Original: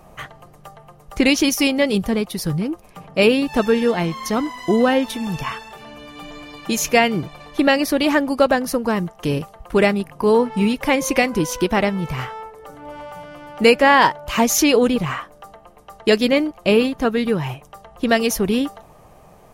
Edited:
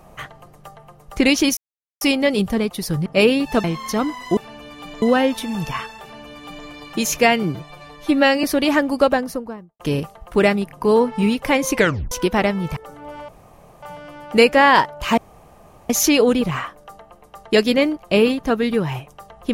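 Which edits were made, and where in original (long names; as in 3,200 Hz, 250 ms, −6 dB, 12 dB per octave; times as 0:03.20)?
0:01.57: splice in silence 0.44 s
0:02.62–0:03.08: remove
0:03.66–0:04.01: remove
0:05.74–0:06.39: duplicate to 0:04.74
0:07.15–0:07.82: time-stretch 1.5×
0:08.38–0:09.18: fade out and dull
0:11.14: tape stop 0.36 s
0:12.15–0:12.57: remove
0:13.09: splice in room tone 0.54 s
0:14.44: splice in room tone 0.72 s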